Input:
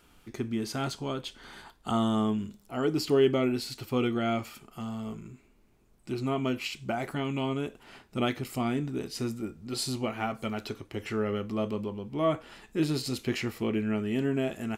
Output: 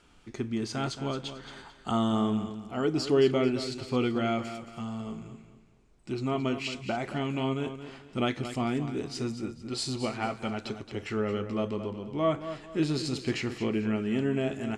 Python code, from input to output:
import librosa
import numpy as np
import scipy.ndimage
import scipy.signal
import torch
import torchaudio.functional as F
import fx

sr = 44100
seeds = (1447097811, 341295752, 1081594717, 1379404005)

p1 = scipy.signal.sosfilt(scipy.signal.butter(4, 8500.0, 'lowpass', fs=sr, output='sos'), x)
y = p1 + fx.echo_feedback(p1, sr, ms=222, feedback_pct=32, wet_db=-11, dry=0)